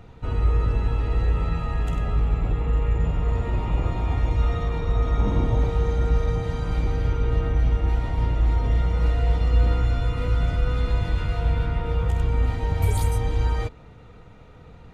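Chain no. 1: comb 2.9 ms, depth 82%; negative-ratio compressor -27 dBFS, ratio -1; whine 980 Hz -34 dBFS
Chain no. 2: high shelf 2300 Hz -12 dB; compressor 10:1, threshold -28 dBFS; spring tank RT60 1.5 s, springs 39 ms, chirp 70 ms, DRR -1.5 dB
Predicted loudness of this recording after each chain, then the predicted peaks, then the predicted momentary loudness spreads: -29.5, -32.0 LUFS; -8.5, -16.0 dBFS; 4, 6 LU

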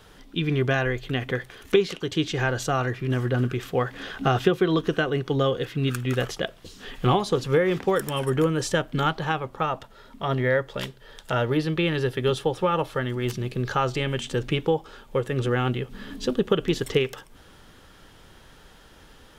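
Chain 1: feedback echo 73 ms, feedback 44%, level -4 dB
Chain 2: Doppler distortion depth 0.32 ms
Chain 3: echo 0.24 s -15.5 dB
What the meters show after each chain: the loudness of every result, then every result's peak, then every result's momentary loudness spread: -23.5, -25.5, -25.5 LUFS; -6.0, -7.0, -6.5 dBFS; 8, 8, 8 LU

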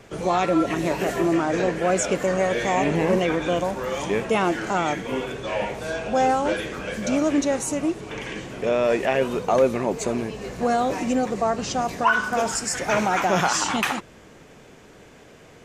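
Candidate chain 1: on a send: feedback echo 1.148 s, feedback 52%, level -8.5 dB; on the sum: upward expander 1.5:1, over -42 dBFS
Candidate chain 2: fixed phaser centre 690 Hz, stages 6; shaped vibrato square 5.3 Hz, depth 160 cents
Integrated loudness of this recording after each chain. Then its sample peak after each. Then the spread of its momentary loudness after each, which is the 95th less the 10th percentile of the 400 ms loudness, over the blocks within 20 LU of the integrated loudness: -26.0, -26.5 LUFS; -8.0, -9.0 dBFS; 12, 8 LU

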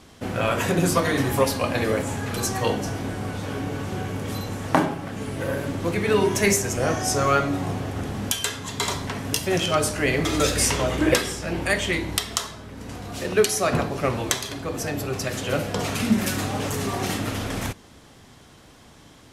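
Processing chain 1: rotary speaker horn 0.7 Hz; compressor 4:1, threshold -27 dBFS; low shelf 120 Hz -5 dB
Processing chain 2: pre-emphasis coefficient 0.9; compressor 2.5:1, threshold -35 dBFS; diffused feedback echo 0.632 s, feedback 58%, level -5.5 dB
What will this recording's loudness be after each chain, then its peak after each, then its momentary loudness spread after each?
-32.0, -36.0 LUFS; -6.0, -10.5 dBFS; 6, 8 LU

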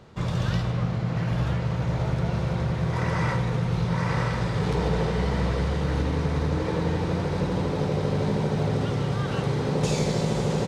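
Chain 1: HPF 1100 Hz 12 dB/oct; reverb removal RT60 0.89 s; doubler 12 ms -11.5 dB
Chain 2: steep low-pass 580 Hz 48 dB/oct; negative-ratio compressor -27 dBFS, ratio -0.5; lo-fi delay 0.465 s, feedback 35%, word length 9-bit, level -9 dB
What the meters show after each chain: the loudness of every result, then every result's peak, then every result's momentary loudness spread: -39.0, -28.5 LUFS; -22.0, -14.0 dBFS; 7, 3 LU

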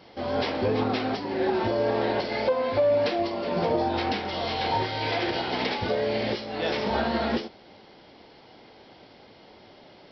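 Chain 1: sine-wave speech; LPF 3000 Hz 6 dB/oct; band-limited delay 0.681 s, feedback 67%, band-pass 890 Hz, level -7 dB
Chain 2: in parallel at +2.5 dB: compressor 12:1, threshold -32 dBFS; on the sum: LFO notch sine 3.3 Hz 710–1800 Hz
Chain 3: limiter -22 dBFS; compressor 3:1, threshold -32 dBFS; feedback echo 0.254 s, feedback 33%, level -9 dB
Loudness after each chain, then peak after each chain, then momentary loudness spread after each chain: -26.0, -24.5, -34.0 LUFS; -6.0, -11.0, -23.0 dBFS; 20, 14, 17 LU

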